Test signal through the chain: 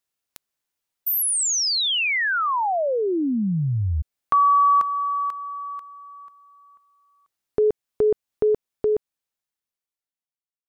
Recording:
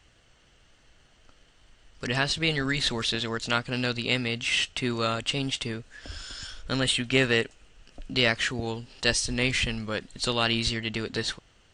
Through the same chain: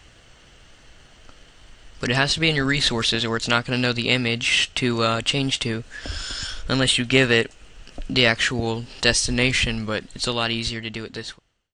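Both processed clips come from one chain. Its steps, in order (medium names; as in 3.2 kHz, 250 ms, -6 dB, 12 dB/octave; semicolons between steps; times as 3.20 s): fade out at the end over 2.33 s; in parallel at -1 dB: compression, threshold -36 dBFS; on the sum: trim +4.5 dB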